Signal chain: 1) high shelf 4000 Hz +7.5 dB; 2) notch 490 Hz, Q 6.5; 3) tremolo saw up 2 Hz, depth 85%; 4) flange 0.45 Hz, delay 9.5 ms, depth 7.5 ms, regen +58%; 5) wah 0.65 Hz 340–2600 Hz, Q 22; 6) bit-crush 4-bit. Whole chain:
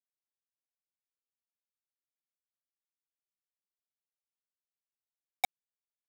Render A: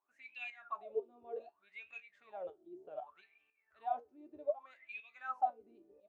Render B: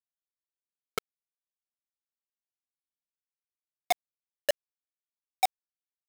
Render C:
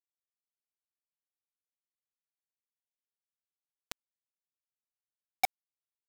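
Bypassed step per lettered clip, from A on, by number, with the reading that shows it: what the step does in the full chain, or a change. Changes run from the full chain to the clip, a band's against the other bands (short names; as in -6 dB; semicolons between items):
6, crest factor change -10.0 dB; 4, crest factor change -10.5 dB; 3, momentary loudness spread change +15 LU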